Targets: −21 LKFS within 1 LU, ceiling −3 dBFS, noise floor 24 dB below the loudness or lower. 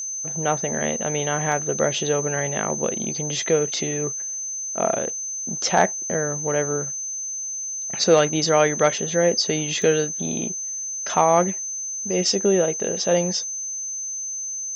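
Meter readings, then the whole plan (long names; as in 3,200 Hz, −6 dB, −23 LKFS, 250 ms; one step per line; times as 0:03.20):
number of dropouts 2; longest dropout 1.1 ms; interfering tone 6,200 Hz; level of the tone −27 dBFS; integrated loudness −22.5 LKFS; sample peak −5.0 dBFS; target loudness −21.0 LKFS
→ repair the gap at 0:01.52/0:09.82, 1.1 ms
notch filter 6,200 Hz, Q 30
level +1.5 dB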